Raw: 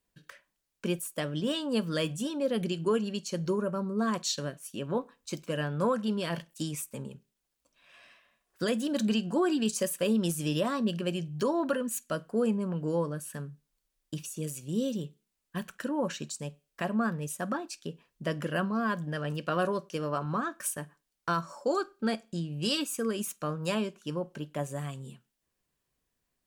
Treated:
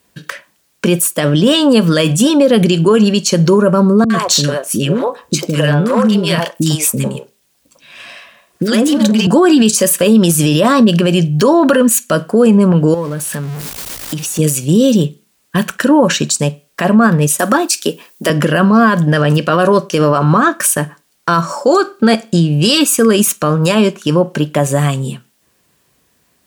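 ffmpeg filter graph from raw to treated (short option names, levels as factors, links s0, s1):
-filter_complex "[0:a]asettb=1/sr,asplit=3[s0][s1][s2];[s0]atrim=end=4.044[s3];[s1]atrim=start=4.04:end=9.27,asetpts=PTS-STARTPTS,afade=t=in:d=0.004:c=qsin,afade=t=out:st=5.226:d=0.004:c=qsin,acompressor=threshold=0.0316:ratio=6:attack=3.2:release=140:knee=1:detection=peak,aeval=exprs='clip(val(0),-1,0.0299)':c=same,acrossover=split=410|1300[s4][s5][s6];[s6]adelay=60[s7];[s5]adelay=100[s8];[s4][s8][s7]amix=inputs=3:normalize=0,atrim=end_sample=230643[s9];[s2]atrim=start=9.266[s10];[s3][s9]acrossfade=d=0.004:c1=hsin:c2=qsin[s11];[s11][s10]acrossfade=d=0.004:c1=qsin:c2=hsin,asettb=1/sr,asplit=3[s12][s13][s14];[s12]atrim=end=12.944[s15];[s13]atrim=start=12.94:end=14.39,asetpts=PTS-STARTPTS,afade=t=in:d=0.004:c=qsin,afade=t=out:st=1.446:d=0.004:c=qsin,aeval=exprs='val(0)+0.5*0.00794*sgn(val(0))':c=same,acompressor=threshold=0.00631:ratio=3:attack=3.2:release=140:knee=1:detection=peak[s16];[s14]atrim=start=14.386[s17];[s15][s16]acrossfade=d=0.004:c1=hsin:c2=qsin[s18];[s18][s17]acrossfade=d=0.004:c1=qsin:c2=hsin,asettb=1/sr,asplit=3[s19][s20][s21];[s19]atrim=end=17.394[s22];[s20]atrim=start=17.39:end=18.3,asetpts=PTS-STARTPTS,afade=t=in:d=0.004:c=qsin,afade=t=out:st=0.906:d=0.004:c=qsin,highpass=f=230:w=0.5412,highpass=f=230:w=1.3066,aemphasis=mode=production:type=50kf[s23];[s21]atrim=start=18.296[s24];[s22][s23]acrossfade=d=0.004:c1=hsin:c2=qsin[s25];[s25][s24]acrossfade=d=0.004:c1=qsin:c2=hsin,highpass=85,alimiter=level_in=17.8:limit=0.891:release=50:level=0:latency=1,volume=0.891"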